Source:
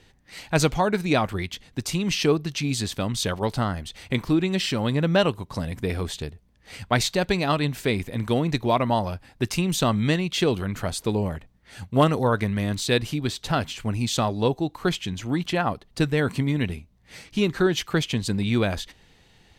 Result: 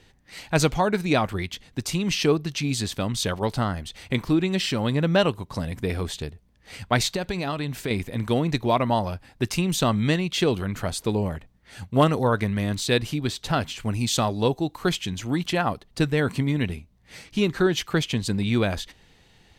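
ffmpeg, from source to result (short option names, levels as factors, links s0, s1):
-filter_complex "[0:a]asettb=1/sr,asplit=3[s0][s1][s2];[s0]atrim=end=7.164[s3];[s1]atrim=start=7.16:end=7.91,asetpts=PTS-STARTPTS,afade=t=in:d=0.004:c=qsin,afade=t=out:st=0.746:d=0.004:c=qsin,acompressor=threshold=0.0708:ratio=6:attack=3.2:release=140:knee=1:detection=peak[s4];[s2]atrim=start=7.906[s5];[s3][s4]acrossfade=d=0.004:c1=hsin:c2=qsin[s6];[s6][s5]acrossfade=d=0.004:c1=qsin:c2=hsin,asettb=1/sr,asplit=3[s7][s8][s9];[s7]atrim=end=13.834[s10];[s8]atrim=start=13.83:end=15.84,asetpts=PTS-STARTPTS,afade=t=in:d=0.004:c=qsin,afade=t=out:st=2.006:d=0.004:c=qsin,highshelf=f=4600:g=4.5[s11];[s9]atrim=start=15.836[s12];[s10][s11]acrossfade=d=0.004:c1=hsin:c2=qsin[s13];[s13][s12]acrossfade=d=0.004:c1=qsin:c2=hsin"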